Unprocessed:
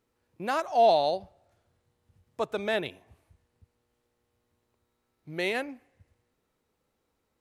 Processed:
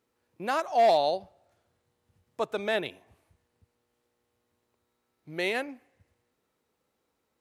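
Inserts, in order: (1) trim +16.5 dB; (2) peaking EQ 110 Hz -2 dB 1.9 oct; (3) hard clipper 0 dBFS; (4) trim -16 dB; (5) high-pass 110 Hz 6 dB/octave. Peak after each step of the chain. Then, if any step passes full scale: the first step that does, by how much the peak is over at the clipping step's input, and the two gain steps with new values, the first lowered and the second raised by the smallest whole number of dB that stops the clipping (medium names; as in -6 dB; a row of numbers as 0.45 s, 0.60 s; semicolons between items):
+4.0 dBFS, +4.0 dBFS, 0.0 dBFS, -16.0 dBFS, -15.0 dBFS; step 1, 4.0 dB; step 1 +12.5 dB, step 4 -12 dB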